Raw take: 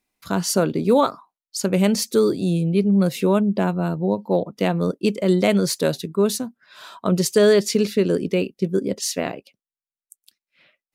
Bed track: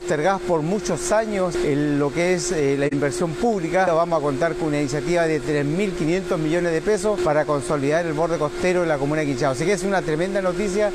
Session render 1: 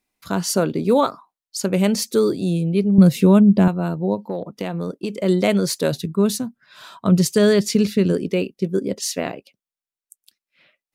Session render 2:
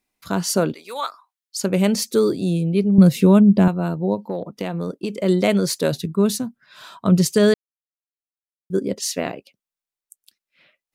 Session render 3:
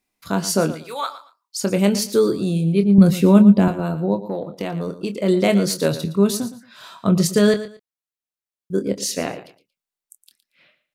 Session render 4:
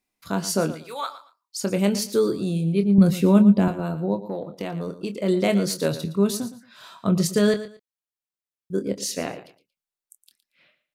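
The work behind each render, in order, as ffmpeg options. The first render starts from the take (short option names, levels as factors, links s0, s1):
-filter_complex "[0:a]asettb=1/sr,asplit=3[s0][s1][s2];[s0]atrim=end=2.984[s3];[s1]atrim=start=2.98:end=3.68,asetpts=PTS-STARTPTS,afade=t=in:d=0.004:c=qsin,afade=t=out:st=0.696:d=0.004:c=qsin,bass=f=250:g=12,treble=f=4000:g=2[s4];[s2]atrim=start=3.676[s5];[s3][s4]acrossfade=d=0.004:c1=hsin:c2=qsin[s6];[s6][s5]acrossfade=d=0.004:c1=qsin:c2=hsin,asettb=1/sr,asplit=3[s7][s8][s9];[s7]atrim=end=4.234[s10];[s8]atrim=start=4.23:end=5.14,asetpts=PTS-STARTPTS,afade=t=in:d=0.004:c=qsin,afade=t=out:st=0.906:d=0.004:c=qsin,acompressor=threshold=0.0891:ratio=5:attack=3.2:release=140:knee=1:detection=peak[s11];[s9]atrim=start=5.136[s12];[s10][s11]acrossfade=d=0.004:c1=hsin:c2=qsin[s13];[s13][s12]acrossfade=d=0.004:c1=qsin:c2=hsin,asplit=3[s14][s15][s16];[s14]afade=t=out:st=5.91:d=0.02[s17];[s15]asubboost=boost=3:cutoff=210,afade=t=in:st=5.91:d=0.02,afade=t=out:st=8.12:d=0.02[s18];[s16]afade=t=in:st=8.12:d=0.02[s19];[s17][s18][s19]amix=inputs=3:normalize=0"
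-filter_complex "[0:a]asettb=1/sr,asplit=3[s0][s1][s2];[s0]atrim=end=0.744[s3];[s1]atrim=start=0.74:end=1.57,asetpts=PTS-STARTPTS,afade=t=in:d=0.004:c=qsin,afade=t=out:st=0.826:d=0.004:c=qsin,highpass=1300[s4];[s2]atrim=start=1.566[s5];[s3][s4]acrossfade=d=0.004:c1=hsin:c2=qsin[s6];[s6][s5]acrossfade=d=0.004:c1=qsin:c2=hsin,asplit=3[s7][s8][s9];[s7]atrim=end=7.54,asetpts=PTS-STARTPTS,afade=t=out:st=7.536:d=0.004:c=hsin[s10];[s8]atrim=start=7.54:end=8.7,asetpts=PTS-STARTPTS,volume=0[s11];[s9]atrim=start=8.7,asetpts=PTS-STARTPTS,afade=t=in:d=0.004:c=hsin[s12];[s10][s11][s12]concat=n=3:v=0:a=1"
-filter_complex "[0:a]asplit=2[s0][s1];[s1]adelay=25,volume=0.355[s2];[s0][s2]amix=inputs=2:normalize=0,aecho=1:1:115|230:0.2|0.0439"
-af "volume=0.631"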